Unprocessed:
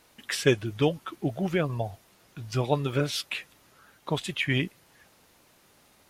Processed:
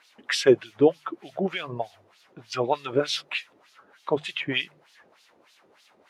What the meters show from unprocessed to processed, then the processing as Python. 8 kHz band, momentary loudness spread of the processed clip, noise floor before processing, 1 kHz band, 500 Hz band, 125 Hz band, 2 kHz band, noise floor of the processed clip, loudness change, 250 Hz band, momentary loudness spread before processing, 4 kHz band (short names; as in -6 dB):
-0.5 dB, 16 LU, -61 dBFS, +3.5 dB, +5.0 dB, -9.0 dB, +1.0 dB, -61 dBFS, +2.5 dB, +1.0 dB, 10 LU, +3.0 dB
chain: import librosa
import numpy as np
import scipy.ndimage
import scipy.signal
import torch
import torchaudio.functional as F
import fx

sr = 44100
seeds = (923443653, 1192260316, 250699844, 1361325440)

y = fx.hum_notches(x, sr, base_hz=50, count=3)
y = fx.filter_lfo_bandpass(y, sr, shape='sine', hz=3.3, low_hz=370.0, high_hz=4400.0, q=1.6)
y = y * 10.0 ** (8.5 / 20.0)